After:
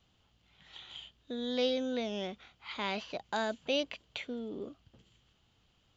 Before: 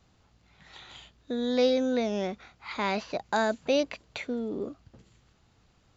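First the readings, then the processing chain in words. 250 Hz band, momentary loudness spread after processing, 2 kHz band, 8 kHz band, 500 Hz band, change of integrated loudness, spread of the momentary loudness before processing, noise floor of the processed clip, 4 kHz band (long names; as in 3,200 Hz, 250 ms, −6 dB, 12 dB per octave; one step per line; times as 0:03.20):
−7.5 dB, 16 LU, −5.5 dB, can't be measured, −7.5 dB, −7.0 dB, 18 LU, −71 dBFS, −0.5 dB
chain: parametric band 3,100 Hz +13 dB 0.41 octaves
level −7.5 dB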